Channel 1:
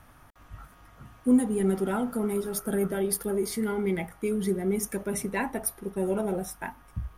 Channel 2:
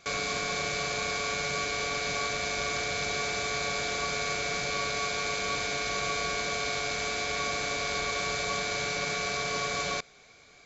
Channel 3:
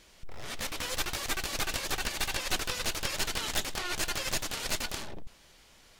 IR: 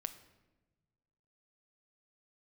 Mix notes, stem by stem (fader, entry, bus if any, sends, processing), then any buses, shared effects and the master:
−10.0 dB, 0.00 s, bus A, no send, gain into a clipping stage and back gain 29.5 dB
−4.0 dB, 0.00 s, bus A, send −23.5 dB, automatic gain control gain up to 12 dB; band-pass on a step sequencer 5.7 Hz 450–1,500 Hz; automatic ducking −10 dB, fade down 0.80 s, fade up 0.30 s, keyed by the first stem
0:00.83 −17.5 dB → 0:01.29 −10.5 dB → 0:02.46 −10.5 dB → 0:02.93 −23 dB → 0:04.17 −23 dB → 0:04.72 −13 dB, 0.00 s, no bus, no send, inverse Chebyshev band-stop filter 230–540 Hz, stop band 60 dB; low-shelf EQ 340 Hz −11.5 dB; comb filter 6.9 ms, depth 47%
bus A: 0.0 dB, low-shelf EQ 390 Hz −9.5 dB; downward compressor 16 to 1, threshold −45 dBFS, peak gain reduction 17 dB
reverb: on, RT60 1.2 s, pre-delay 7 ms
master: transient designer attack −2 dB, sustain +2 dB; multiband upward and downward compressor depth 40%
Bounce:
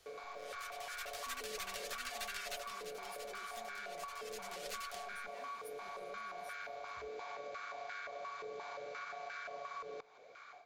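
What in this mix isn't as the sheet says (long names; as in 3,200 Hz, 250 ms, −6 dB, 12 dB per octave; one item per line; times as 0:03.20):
stem 1 −10.0 dB → −21.5 dB
master: missing transient designer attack −2 dB, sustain +2 dB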